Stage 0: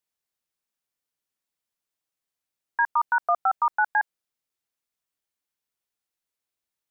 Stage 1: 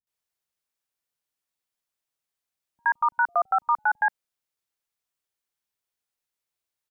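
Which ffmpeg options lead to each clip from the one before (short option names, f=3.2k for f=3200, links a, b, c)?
-filter_complex "[0:a]acrossover=split=250[a][b];[b]adelay=70[c];[a][c]amix=inputs=2:normalize=0"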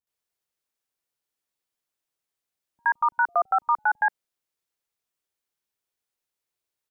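-af "equalizer=f=390:w=1.3:g=3.5"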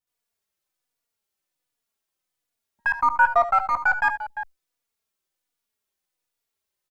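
-filter_complex "[0:a]aeval=exprs='if(lt(val(0),0),0.708*val(0),val(0))':c=same,aecho=1:1:74|87|347:0.224|0.112|0.237,asplit=2[a][b];[b]adelay=3.5,afreqshift=-1.3[c];[a][c]amix=inputs=2:normalize=1,volume=6.5dB"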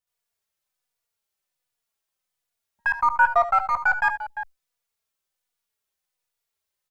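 -af "equalizer=f=280:w=1.7:g=-8.5"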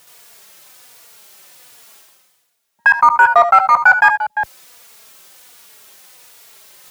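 -af "highpass=160,apsyclip=14.5dB,areverse,acompressor=mode=upward:threshold=-21dB:ratio=2.5,areverse,volume=-2dB"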